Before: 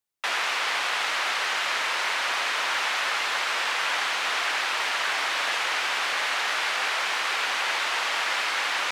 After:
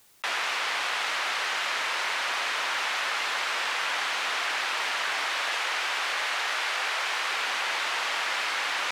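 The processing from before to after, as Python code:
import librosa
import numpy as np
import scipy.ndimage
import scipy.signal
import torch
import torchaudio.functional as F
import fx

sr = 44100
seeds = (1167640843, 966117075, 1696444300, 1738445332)

y = fx.highpass(x, sr, hz=270.0, slope=12, at=(5.25, 7.26))
y = fx.env_flatten(y, sr, amount_pct=50)
y = y * 10.0 ** (-3.0 / 20.0)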